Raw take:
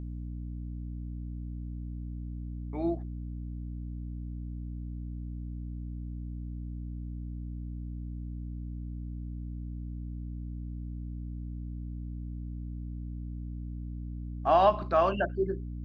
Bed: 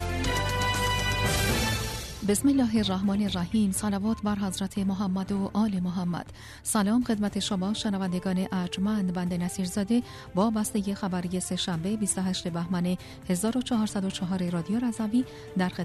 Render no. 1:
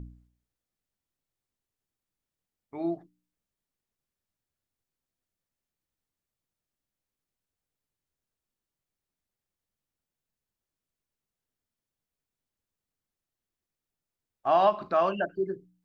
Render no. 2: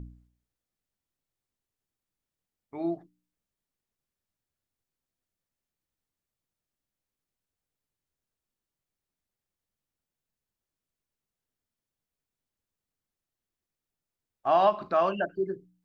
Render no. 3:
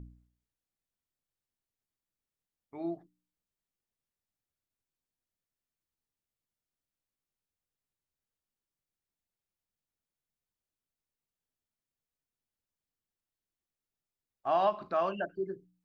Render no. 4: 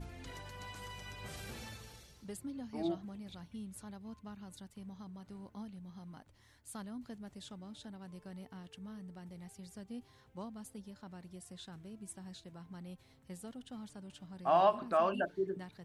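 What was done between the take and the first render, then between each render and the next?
hum removal 60 Hz, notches 5
no processing that can be heard
level −5.5 dB
mix in bed −21 dB

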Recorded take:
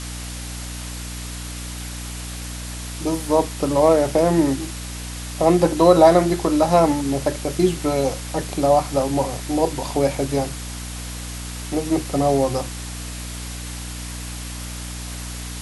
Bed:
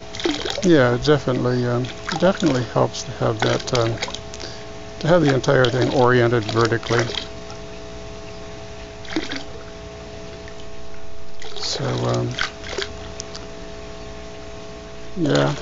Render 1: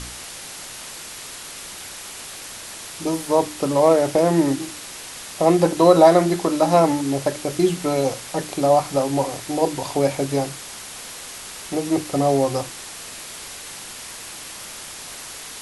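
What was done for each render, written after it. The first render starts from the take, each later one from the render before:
hum removal 60 Hz, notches 5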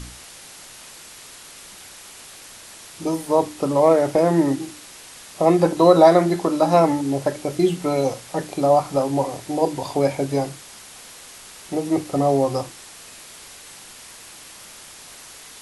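noise reduction from a noise print 6 dB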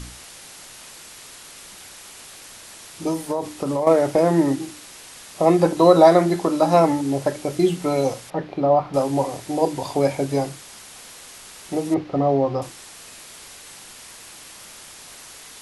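0:03.12–0:03.87: downward compressor, threshold −19 dBFS
0:08.30–0:08.94: high-frequency loss of the air 310 metres
0:11.94–0:12.62: high-frequency loss of the air 250 metres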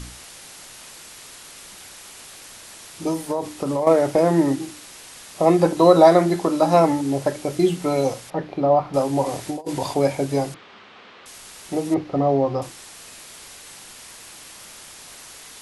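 0:09.26–0:09.94: compressor whose output falls as the input rises −26 dBFS, ratio −0.5
0:10.54–0:11.26: loudspeaker in its box 110–3,400 Hz, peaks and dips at 140 Hz −7 dB, 210 Hz +4 dB, 410 Hz +5 dB, 1,200 Hz +5 dB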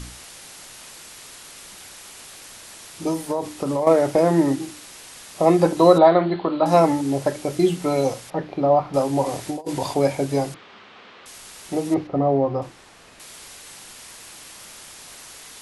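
0:05.98–0:06.66: Chebyshev low-pass with heavy ripple 4,400 Hz, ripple 3 dB
0:12.07–0:13.20: low-pass filter 1,800 Hz 6 dB per octave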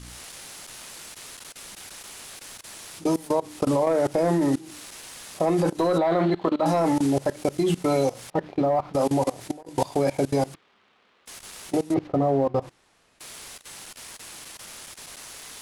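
leveller curve on the samples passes 1
output level in coarse steps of 21 dB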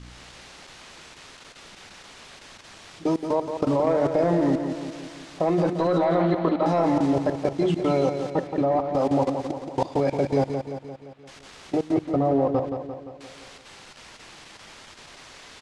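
high-frequency loss of the air 120 metres
repeating echo 173 ms, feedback 56%, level −7.5 dB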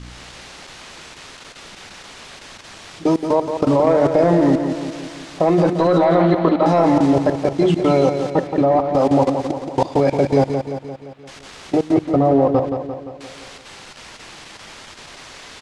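level +7 dB
brickwall limiter −3 dBFS, peak gain reduction 2 dB

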